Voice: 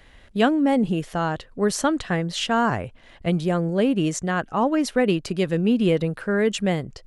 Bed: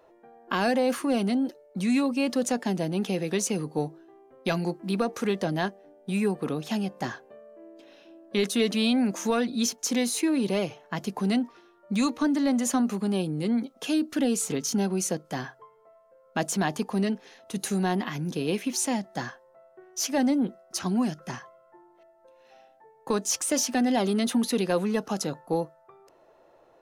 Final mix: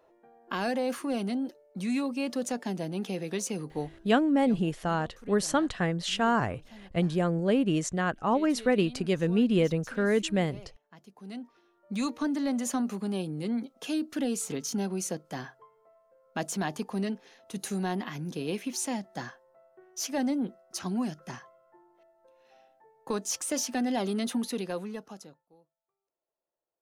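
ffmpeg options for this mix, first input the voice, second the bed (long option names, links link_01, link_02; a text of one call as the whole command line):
ffmpeg -i stem1.wav -i stem2.wav -filter_complex "[0:a]adelay=3700,volume=-4.5dB[link_01];[1:a]volume=11.5dB,afade=type=out:start_time=4.01:duration=0.22:silence=0.149624,afade=type=in:start_time=11.18:duration=0.92:silence=0.141254,afade=type=out:start_time=24.28:duration=1.17:silence=0.0334965[link_02];[link_01][link_02]amix=inputs=2:normalize=0" out.wav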